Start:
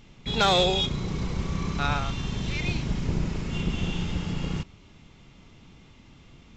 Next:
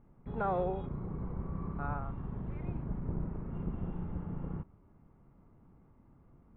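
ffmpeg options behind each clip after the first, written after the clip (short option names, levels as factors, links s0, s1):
-af "lowpass=f=1300:w=0.5412,lowpass=f=1300:w=1.3066,volume=0.355"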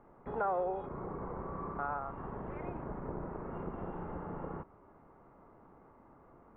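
-filter_complex "[0:a]acrossover=split=370 2200:gain=0.126 1 0.0794[s0][s1][s2];[s0][s1][s2]amix=inputs=3:normalize=0,bandreject=f=2300:w=29,acompressor=threshold=0.00251:ratio=2,volume=4.22"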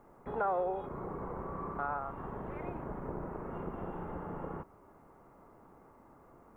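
-af "bass=f=250:g=-1,treble=f=4000:g=12,volume=1.12"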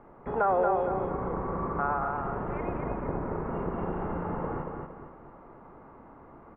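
-filter_complex "[0:a]lowpass=f=2900:w=0.5412,lowpass=f=2900:w=1.3066,asplit=2[s0][s1];[s1]aecho=0:1:230|460|690|920|1150:0.631|0.252|0.101|0.0404|0.0162[s2];[s0][s2]amix=inputs=2:normalize=0,volume=2.11"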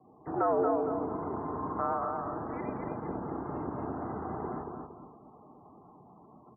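-af "bandreject=f=640:w=12,afftdn=nr=35:nf=-50,highpass=f=220:t=q:w=0.5412,highpass=f=220:t=q:w=1.307,lowpass=f=2500:t=q:w=0.5176,lowpass=f=2500:t=q:w=0.7071,lowpass=f=2500:t=q:w=1.932,afreqshift=-94,volume=0.794"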